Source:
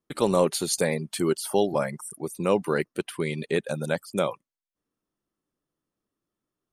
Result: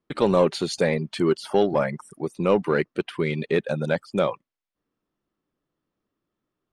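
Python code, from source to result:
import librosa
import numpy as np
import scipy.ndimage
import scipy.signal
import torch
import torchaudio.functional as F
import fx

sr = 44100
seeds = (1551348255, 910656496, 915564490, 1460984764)

p1 = scipy.signal.sosfilt(scipy.signal.butter(2, 3800.0, 'lowpass', fs=sr, output='sos'), x)
p2 = 10.0 ** (-21.0 / 20.0) * np.tanh(p1 / 10.0 ** (-21.0 / 20.0))
y = p1 + (p2 * librosa.db_to_amplitude(-3.5))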